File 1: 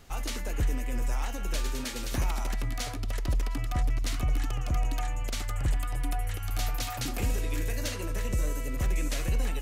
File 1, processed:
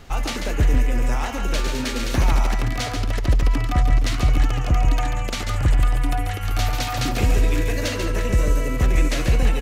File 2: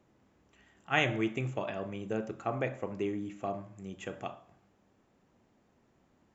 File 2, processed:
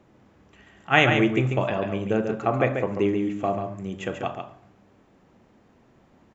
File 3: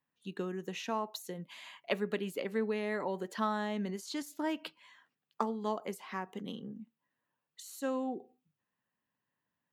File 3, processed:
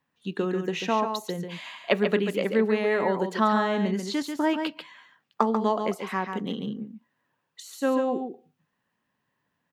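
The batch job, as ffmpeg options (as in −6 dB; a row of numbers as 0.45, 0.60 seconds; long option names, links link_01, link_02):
-filter_complex "[0:a]aecho=1:1:140:0.473,asplit=2[link_01][link_02];[link_02]adynamicsmooth=sensitivity=0.5:basefreq=7000,volume=3dB[link_03];[link_01][link_03]amix=inputs=2:normalize=0,volume=2.5dB"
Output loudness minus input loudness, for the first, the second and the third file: +10.0, +11.0, +10.5 LU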